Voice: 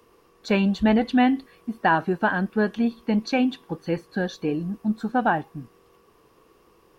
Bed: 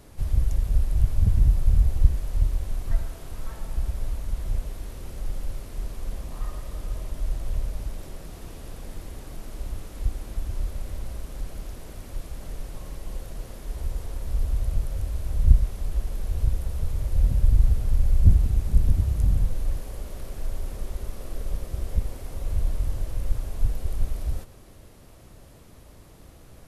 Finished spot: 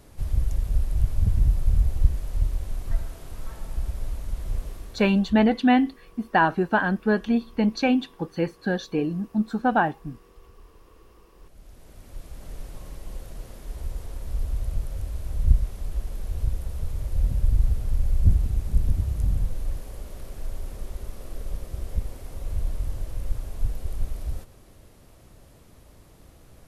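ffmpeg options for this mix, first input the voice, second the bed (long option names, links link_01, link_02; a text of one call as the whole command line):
ffmpeg -i stem1.wav -i stem2.wav -filter_complex "[0:a]adelay=4500,volume=0.5dB[link_01];[1:a]volume=18.5dB,afade=type=out:start_time=4.68:duration=0.65:silence=0.0891251,afade=type=in:start_time=11.34:duration=1.25:silence=0.1[link_02];[link_01][link_02]amix=inputs=2:normalize=0" out.wav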